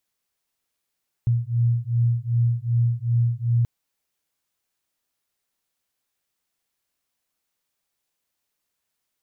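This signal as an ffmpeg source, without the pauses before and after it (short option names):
-f lavfi -i "aevalsrc='0.0841*(sin(2*PI*117*t)+sin(2*PI*119.6*t))':d=2.38:s=44100"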